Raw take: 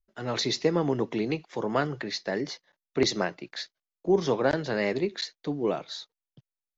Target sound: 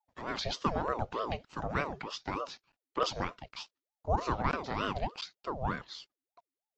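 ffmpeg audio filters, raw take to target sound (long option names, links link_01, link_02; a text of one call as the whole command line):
ffmpeg -i in.wav -filter_complex "[0:a]acrossover=split=5600[link_01][link_02];[link_02]acompressor=threshold=-54dB:ratio=4:attack=1:release=60[link_03];[link_01][link_03]amix=inputs=2:normalize=0,aeval=exprs='val(0)*sin(2*PI*570*n/s+570*0.55/3.3*sin(2*PI*3.3*n/s))':channel_layout=same,volume=-3.5dB" out.wav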